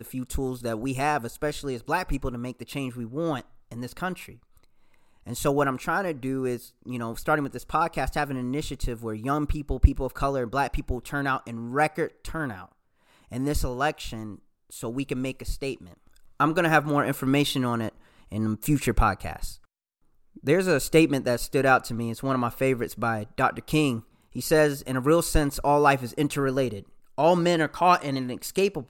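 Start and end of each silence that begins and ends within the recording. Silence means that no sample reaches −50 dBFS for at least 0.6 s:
0:19.64–0:20.36

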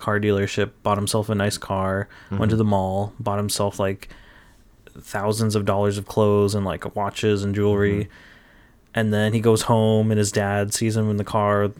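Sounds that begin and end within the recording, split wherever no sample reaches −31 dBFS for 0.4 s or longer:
0:04.87–0:08.05

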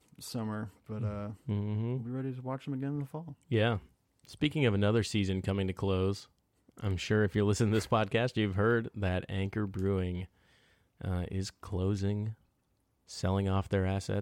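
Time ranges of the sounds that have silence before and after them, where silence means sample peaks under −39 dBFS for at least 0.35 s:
0:04.25–0:06.19
0:06.80–0:10.24
0:11.01–0:12.32

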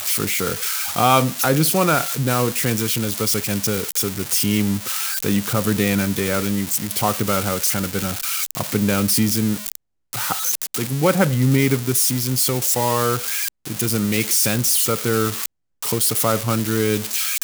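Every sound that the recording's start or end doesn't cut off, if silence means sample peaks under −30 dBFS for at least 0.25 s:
0:10.13–0:15.46

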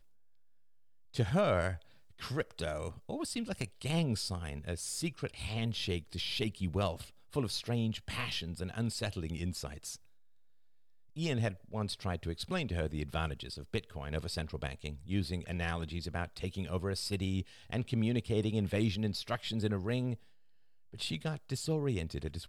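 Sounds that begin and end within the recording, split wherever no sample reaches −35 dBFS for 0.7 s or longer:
0:01.15–0:09.93
0:11.18–0:20.14

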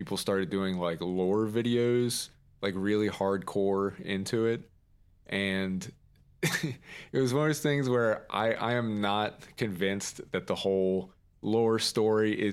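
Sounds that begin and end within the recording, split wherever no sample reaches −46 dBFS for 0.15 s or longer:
0:02.63–0:04.63
0:05.27–0:05.90
0:06.43–0:11.07

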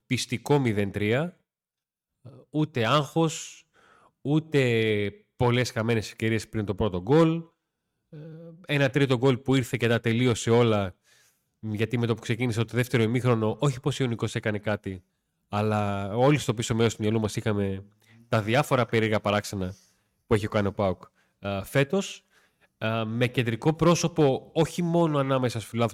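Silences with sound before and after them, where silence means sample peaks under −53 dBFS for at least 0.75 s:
0:01.34–0:02.25

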